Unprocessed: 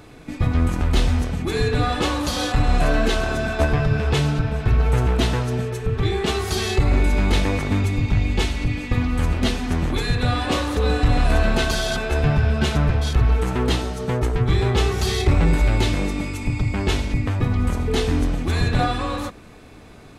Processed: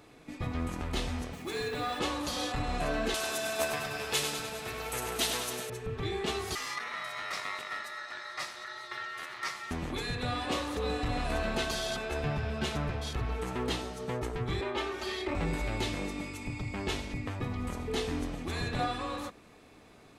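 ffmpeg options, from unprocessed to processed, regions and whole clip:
-filter_complex "[0:a]asettb=1/sr,asplit=3[s0][s1][s2];[s0]atrim=end=1.334[s3];[s1]atrim=start=1.33:end=1.99,asetpts=PTS-STARTPTS,afade=t=in:d=0.004:c=qsin,afade=t=out:st=0.656:d=0.004:c=qsin,lowshelf=f=160:g=-11,acrusher=bits=6:mix=0:aa=0.5[s4];[s2]atrim=start=1.986[s5];[s3][s4]acrossfade=d=0.004:c1=hsin:c2=qsin[s6];[s6][s5]acrossfade=d=0.004:c1=qsin:c2=hsin,asettb=1/sr,asplit=3[s7][s8][s9];[s7]atrim=end=3.144[s10];[s8]atrim=start=3.14:end=5.7,asetpts=PTS-STARTPTS,afade=t=in:d=0.004:c=qsin,afade=t=out:st=2.556:d=0.004:c=qsin,aemphasis=mode=production:type=riaa,aecho=1:1:100|200|300|400|500|600|700|800:0.447|0.268|0.161|0.0965|0.0579|0.0347|0.0208|0.0125,atrim=end_sample=112896[s11];[s9]atrim=start=5.696[s12];[s10][s11]acrossfade=d=0.004:c1=hsin:c2=qsin[s13];[s13][s12]acrossfade=d=0.004:c1=qsin:c2=hsin,asettb=1/sr,asplit=3[s14][s15][s16];[s14]atrim=end=6.554[s17];[s15]atrim=start=6.55:end=9.71,asetpts=PTS-STARTPTS,afade=t=in:d=0.004:c=qsin,afade=t=out:st=3.156:d=0.004:c=qsin,highpass=230,equalizer=f=1200:w=1.5:g=-2.5,aeval=exprs='val(0)*sin(2*PI*1600*n/s)':c=same[s18];[s16]atrim=start=9.706[s19];[s17][s18]acrossfade=d=0.004:c1=hsin:c2=qsin[s20];[s20][s19]acrossfade=d=0.004:c1=qsin:c2=hsin,asettb=1/sr,asplit=3[s21][s22][s23];[s21]atrim=end=14.614[s24];[s22]atrim=start=14.61:end=15.35,asetpts=PTS-STARTPTS,afade=t=in:d=0.004:c=qsin,afade=t=out:st=0.736:d=0.004:c=qsin,acrossover=split=280 3500:gain=0.2 1 0.251[s25][s26][s27];[s25][s26][s27]amix=inputs=3:normalize=0,aecho=1:1:3.3:0.79,atrim=end_sample=32634[s28];[s23]atrim=start=15.346[s29];[s24][s28]acrossfade=d=0.004:c1=hsin:c2=qsin[s30];[s30][s29]acrossfade=d=0.004:c1=qsin:c2=hsin,lowshelf=f=150:g=-10.5,bandreject=f=1500:w=24,volume=0.355"

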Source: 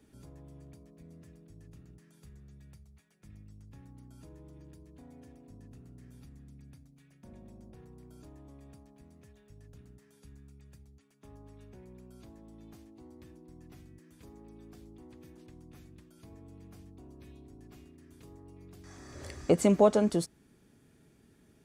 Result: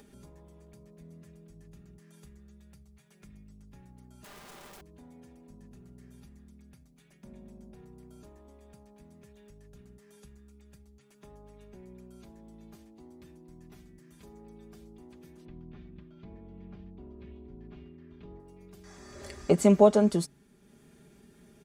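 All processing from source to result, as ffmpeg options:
-filter_complex "[0:a]asettb=1/sr,asplit=3[s0][s1][s2];[s0]atrim=end=4.244[s3];[s1]atrim=start=4.24:end=4.81,asetpts=PTS-STARTPTS,afade=t=in:d=0.004:c=qsin,afade=t=out:st=0.566:d=0.004:c=qsin,acontrast=48,aeval=exprs='(mod(211*val(0)+1,2)-1)/211':c=same[s4];[s2]atrim=start=4.806[s5];[s3][s4]acrossfade=d=0.004:c1=hsin:c2=qsin[s6];[s6][s5]acrossfade=d=0.004:c1=qsin:c2=hsin,asettb=1/sr,asplit=3[s7][s8][s9];[s7]atrim=end=15.454[s10];[s8]atrim=start=15.45:end=18.4,asetpts=PTS-STARTPTS,afade=t=in:d=0.004:c=qsin,afade=t=out:st=2.946:d=0.004:c=qsin,lowpass=f=3600:w=0.5412,lowpass=f=3600:w=1.3066,lowshelf=f=370:g=6.5[s11];[s9]atrim=start=18.396[s12];[s10][s11]acrossfade=d=0.004:c1=hsin:c2=qsin[s13];[s13][s12]acrossfade=d=0.004:c1=qsin:c2=hsin,acompressor=mode=upward:threshold=0.00282:ratio=2.5,aecho=1:1:5:0.58,bandreject=f=138.1:t=h:w=4,bandreject=f=276.2:t=h:w=4"

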